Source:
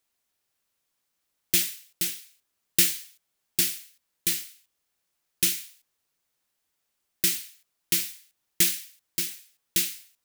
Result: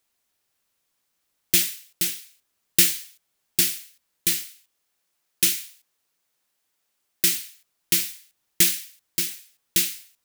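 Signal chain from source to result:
0:04.45–0:07.27: low-shelf EQ 130 Hz −8 dB
level +3.5 dB

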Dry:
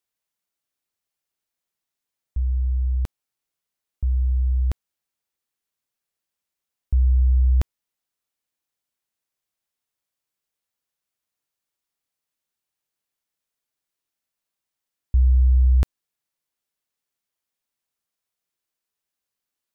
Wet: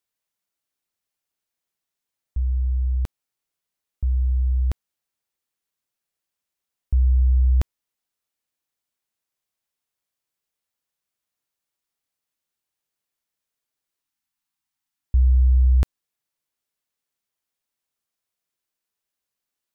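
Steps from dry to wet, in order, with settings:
time-frequency box erased 0:14.03–0:15.05, 330–720 Hz

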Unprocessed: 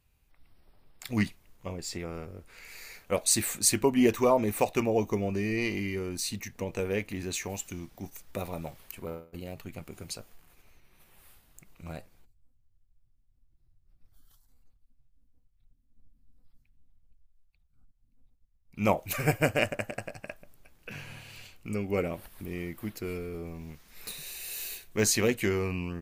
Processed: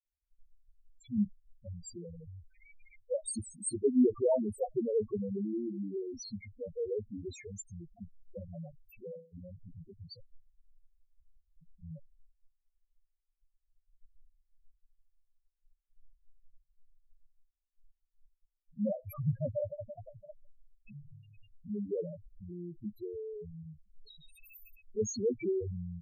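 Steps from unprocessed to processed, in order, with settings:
downward expander −54 dBFS
spectral peaks only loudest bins 2

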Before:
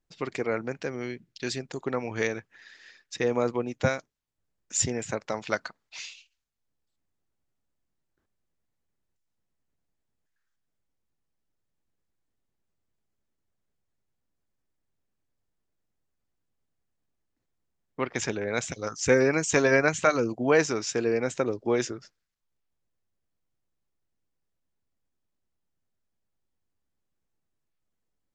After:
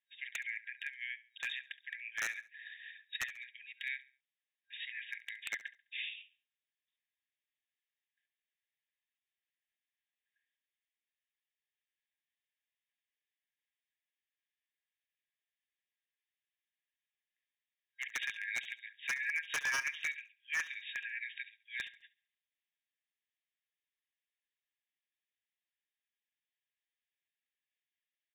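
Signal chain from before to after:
downward compressor 2 to 1, threshold −26 dBFS, peak gain reduction 6 dB
brick-wall band-pass 1,600–3,800 Hz
wave folding −30 dBFS
on a send: repeating echo 69 ms, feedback 34%, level −18 dB
on the sum: level +2 dB

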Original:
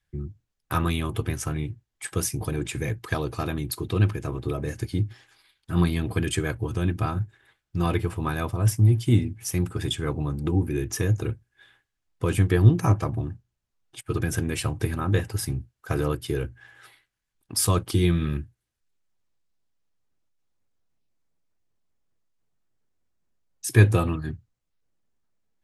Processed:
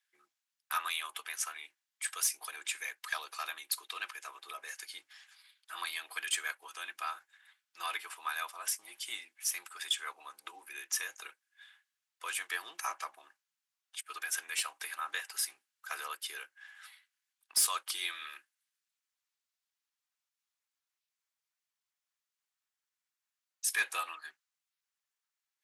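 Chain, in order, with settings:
Bessel high-pass filter 1,500 Hz, order 4
soft clipping −20 dBFS, distortion −17 dB

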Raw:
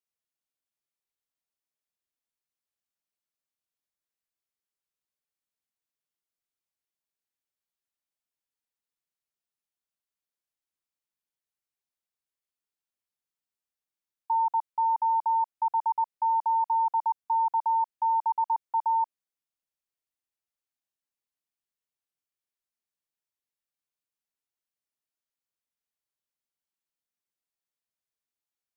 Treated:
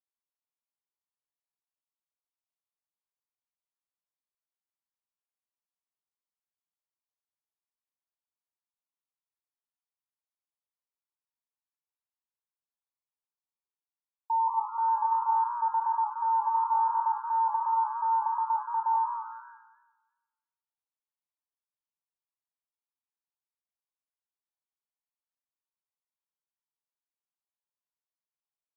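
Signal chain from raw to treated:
resonant band-pass 970 Hz, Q 3
high-frequency loss of the air 450 metres
double-tracking delay 29 ms −6.5 dB
echo with shifted repeats 96 ms, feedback 60%, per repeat +120 Hz, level −16 dB
feedback echo with a swinging delay time 173 ms, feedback 37%, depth 100 cents, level −9 dB

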